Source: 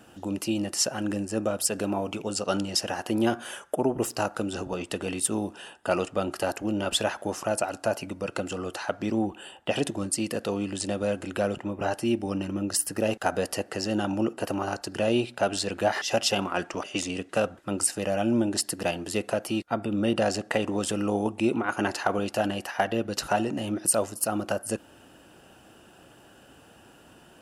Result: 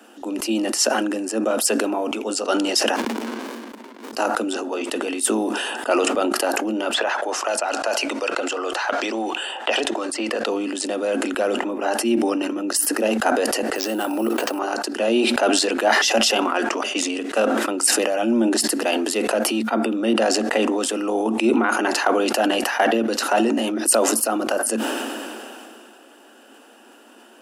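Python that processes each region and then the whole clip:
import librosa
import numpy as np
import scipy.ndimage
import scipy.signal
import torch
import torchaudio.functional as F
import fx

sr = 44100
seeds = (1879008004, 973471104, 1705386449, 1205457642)

y = fx.chain(x, sr, fx.brickwall_highpass(low_hz=900.0),
    fx.peak_eq(hz=2000.0, db=9.5, octaves=2.1),
    fx.running_max(window=65), at=(2.96, 4.13))
y = fx.chain(y, sr, fx.bandpass_edges(low_hz=490.0, high_hz=6900.0),
    fx.band_squash(depth_pct=100), at=(6.94, 10.47))
y = fx.chain(y, sr, fx.low_shelf(hz=190.0, db=-8.5),
    fx.sample_hold(seeds[0], rate_hz=11000.0, jitter_pct=0),
    fx.pre_swell(db_per_s=25.0), at=(13.75, 14.59))
y = scipy.signal.sosfilt(scipy.signal.cheby1(8, 1.0, 220.0, 'highpass', fs=sr, output='sos'), y)
y = fx.sustainer(y, sr, db_per_s=22.0)
y = F.gain(torch.from_numpy(y), 5.5).numpy()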